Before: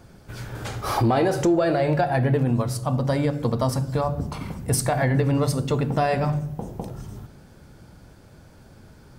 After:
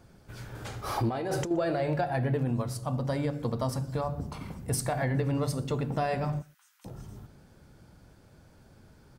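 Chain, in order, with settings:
0:01.09–0:01.51: compressor whose output falls as the input rises −24 dBFS, ratio −1
0:06.42–0:06.85: Butterworth high-pass 1,300 Hz 48 dB per octave
slap from a distant wall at 21 metres, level −25 dB
level −7.5 dB

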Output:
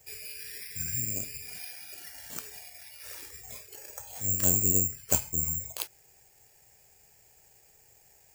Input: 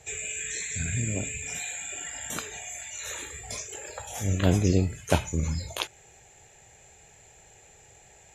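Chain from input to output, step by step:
bad sample-rate conversion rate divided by 6×, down filtered, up zero stuff
level −10.5 dB

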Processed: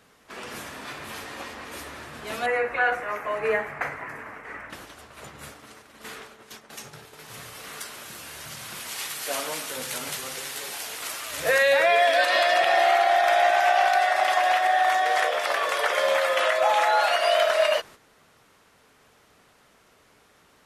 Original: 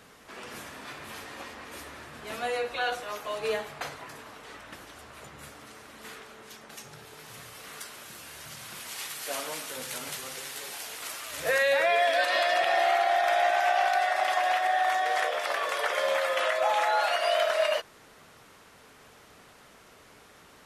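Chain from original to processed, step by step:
noise gate −47 dBFS, range −9 dB
0:02.46–0:04.70: high shelf with overshoot 2,700 Hz −10 dB, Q 3
level +4.5 dB

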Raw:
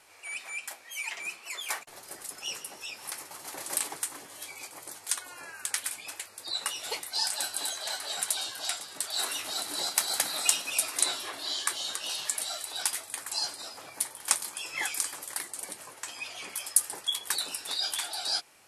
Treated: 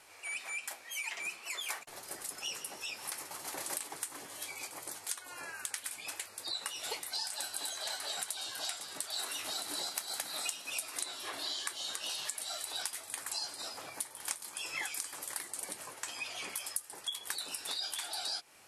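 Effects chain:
downward compressor 6 to 1, threshold −35 dBFS, peak gain reduction 17.5 dB

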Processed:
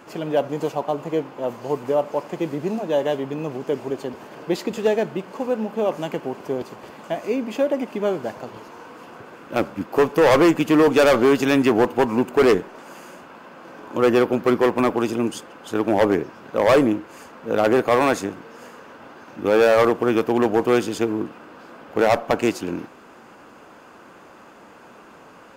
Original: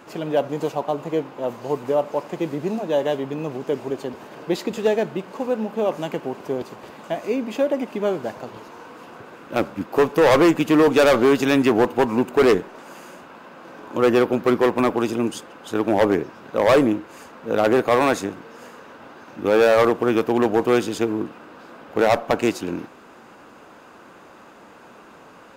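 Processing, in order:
notch filter 3,800 Hz, Q 18

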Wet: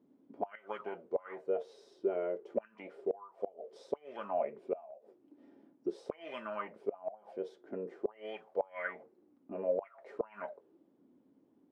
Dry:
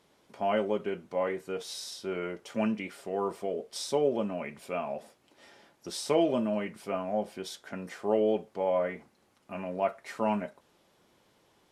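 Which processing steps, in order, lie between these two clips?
envelope filter 260–2,000 Hz, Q 6.2, up, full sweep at −23 dBFS
gate with flip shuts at −32 dBFS, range −24 dB
level +11.5 dB

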